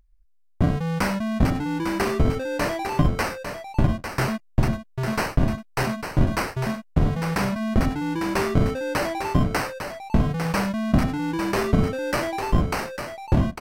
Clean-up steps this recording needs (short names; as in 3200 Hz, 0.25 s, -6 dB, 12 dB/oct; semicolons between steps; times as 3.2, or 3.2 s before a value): inverse comb 0.851 s -7.5 dB